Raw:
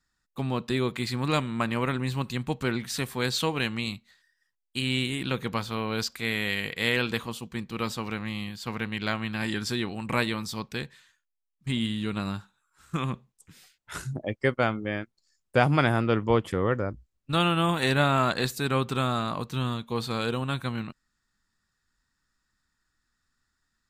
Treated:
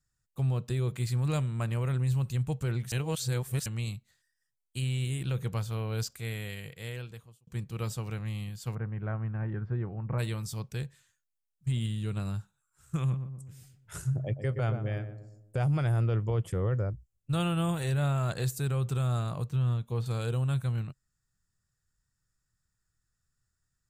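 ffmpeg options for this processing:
ffmpeg -i in.wav -filter_complex "[0:a]asplit=3[link_01][link_02][link_03];[link_01]afade=type=out:start_time=8.74:duration=0.02[link_04];[link_02]lowpass=frequency=1600:width=0.5412,lowpass=frequency=1600:width=1.3066,afade=type=in:start_time=8.74:duration=0.02,afade=type=out:start_time=10.18:duration=0.02[link_05];[link_03]afade=type=in:start_time=10.18:duration=0.02[link_06];[link_04][link_05][link_06]amix=inputs=3:normalize=0,asettb=1/sr,asplit=3[link_07][link_08][link_09];[link_07]atrim=end=13.004[link_10];[link_08]atrim=start=13:end=15.59,asetpts=PTS-STARTPTS,afade=type=in:duration=0.004:curve=qsin,afade=type=out:start_time=2.586:duration=0.004:curve=qsin,asplit=2[link_11][link_12];[link_12]adelay=122,lowpass=frequency=1000:poles=1,volume=-8.5dB,asplit=2[link_13][link_14];[link_14]adelay=122,lowpass=frequency=1000:poles=1,volume=0.52,asplit=2[link_15][link_16];[link_16]adelay=122,lowpass=frequency=1000:poles=1,volume=0.52,asplit=2[link_17][link_18];[link_18]adelay=122,lowpass=frequency=1000:poles=1,volume=0.52,asplit=2[link_19][link_20];[link_20]adelay=122,lowpass=frequency=1000:poles=1,volume=0.52,asplit=2[link_21][link_22];[link_22]adelay=122,lowpass=frequency=1000:poles=1,volume=0.52[link_23];[link_11][link_13][link_15][link_17][link_19][link_21][link_23]amix=inputs=7:normalize=0,atrim=end_sample=114219[link_24];[link_09]atrim=start=15.586[link_25];[link_10][link_24]acrossfade=duration=0.004:curve1=hsin:curve2=qsin[link_26];[link_26][link_25]acrossfade=duration=0.004:curve1=qsin:curve2=hsin,asettb=1/sr,asplit=3[link_27][link_28][link_29];[link_27]atrim=end=19.454[link_30];[link_28]atrim=start=19.45:end=20.06,asetpts=PTS-STARTPTS,afade=type=in:duration=0.004:curve=qsin,afade=type=out:start_time=0.606:duration=0.004:curve=qsin,acrossover=split=3700[link_31][link_32];[link_32]acompressor=threshold=-54dB:ratio=4:attack=1:release=60[link_33];[link_31][link_33]amix=inputs=2:normalize=0[link_34];[link_29]atrim=start=20.056[link_35];[link_30][link_34]acrossfade=duration=0.004:curve1=hsin:curve2=qsin[link_36];[link_36][link_35]acrossfade=duration=0.004:curve1=qsin:curve2=hsin,asplit=4[link_37][link_38][link_39][link_40];[link_37]atrim=end=2.922[link_41];[link_38]atrim=start=2.918:end=3.662,asetpts=PTS-STARTPTS,areverse[link_42];[link_39]atrim=start=3.658:end=7.47,asetpts=PTS-STARTPTS,afade=type=out:start_time=2.362:duration=1.45[link_43];[link_40]atrim=start=7.47,asetpts=PTS-STARTPTS,afade=type=in:duration=0.004:curve=hsin[link_44];[link_41][link_42]acrossfade=duration=0.004:curve1=hsin:curve2=hsin[link_45];[link_43][link_44]concat=n=2:v=0:a=1[link_46];[link_45][link_46]acrossfade=duration=0.004:curve1=hsin:curve2=hsin,equalizer=frequency=125:width_type=o:width=1:gain=10,equalizer=frequency=250:width_type=o:width=1:gain=-12,equalizer=frequency=1000:width_type=o:width=1:gain=-8,equalizer=frequency=2000:width_type=o:width=1:gain=-7,equalizer=frequency=4000:width_type=o:width=1:gain=-9,equalizer=frequency=8000:width_type=o:width=1:gain=3,alimiter=limit=-20dB:level=0:latency=1:release=11,volume=-1.5dB" out.wav

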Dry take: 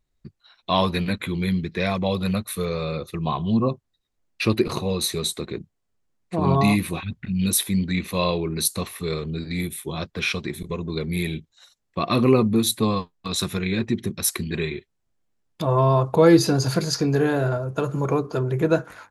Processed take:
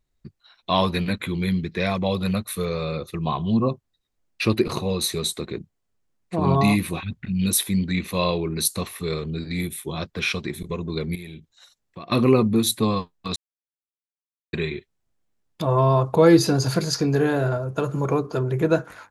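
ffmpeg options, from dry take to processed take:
ffmpeg -i in.wav -filter_complex "[0:a]asettb=1/sr,asplit=3[link_01][link_02][link_03];[link_01]atrim=end=11.154[link_04];[link_02]atrim=start=11.15:end=12.12,asetpts=PTS-STARTPTS,afade=type=in:duration=0.004:curve=qsin,afade=type=out:start_time=0.966:duration=0.004:curve=qsin,acompressor=threshold=-36dB:ratio=4:attack=3.2:release=140:knee=1:detection=peak[link_05];[link_03]atrim=start=12.116[link_06];[link_04][link_05]acrossfade=duration=0.004:curve1=hsin:curve2=qsin[link_07];[link_07][link_06]acrossfade=duration=0.004:curve1=qsin:curve2=hsin,asplit=3[link_08][link_09][link_10];[link_08]atrim=end=13.36,asetpts=PTS-STARTPTS,afade=type=out:start_time=13.356:duration=0.004:curve=hsin[link_11];[link_09]atrim=start=13.36:end=14.53,asetpts=PTS-STARTPTS,volume=0[link_12];[link_10]atrim=start=14.53,asetpts=PTS-STARTPTS,afade=type=in:duration=0.004:curve=hsin[link_13];[link_11][link_12][link_13]concat=n=3:v=0:a=1" out.wav

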